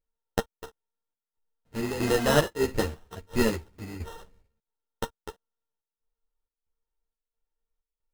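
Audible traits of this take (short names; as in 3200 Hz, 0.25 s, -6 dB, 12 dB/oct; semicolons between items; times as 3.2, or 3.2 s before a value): a buzz of ramps at a fixed pitch in blocks of 16 samples; chopped level 1.5 Hz, depth 65%, duty 70%; aliases and images of a low sample rate 2300 Hz, jitter 0%; a shimmering, thickened sound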